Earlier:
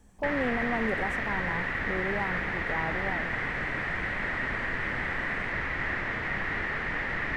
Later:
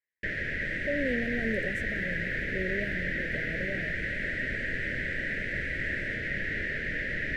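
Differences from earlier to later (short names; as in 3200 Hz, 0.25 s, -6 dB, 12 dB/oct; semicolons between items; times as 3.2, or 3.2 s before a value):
speech: entry +0.65 s; master: add elliptic band-stop 600–1600 Hz, stop band 50 dB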